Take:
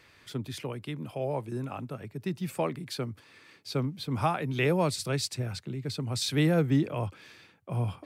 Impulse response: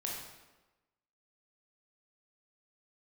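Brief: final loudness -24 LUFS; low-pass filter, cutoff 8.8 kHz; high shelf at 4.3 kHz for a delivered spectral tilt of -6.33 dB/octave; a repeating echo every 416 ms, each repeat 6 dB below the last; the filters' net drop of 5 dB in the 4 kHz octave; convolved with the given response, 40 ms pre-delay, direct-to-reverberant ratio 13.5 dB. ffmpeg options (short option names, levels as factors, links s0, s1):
-filter_complex "[0:a]lowpass=8800,equalizer=f=4000:t=o:g=-3.5,highshelf=f=4300:g=-4,aecho=1:1:416|832|1248|1664|2080|2496:0.501|0.251|0.125|0.0626|0.0313|0.0157,asplit=2[s0][s1];[1:a]atrim=start_sample=2205,adelay=40[s2];[s1][s2]afir=irnorm=-1:irlink=0,volume=0.178[s3];[s0][s3]amix=inputs=2:normalize=0,volume=2.11"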